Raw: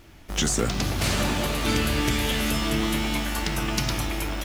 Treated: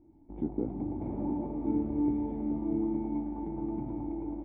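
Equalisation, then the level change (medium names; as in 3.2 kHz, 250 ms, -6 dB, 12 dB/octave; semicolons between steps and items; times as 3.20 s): dynamic bell 550 Hz, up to +4 dB, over -37 dBFS, Q 0.83; cascade formant filter u; 0.0 dB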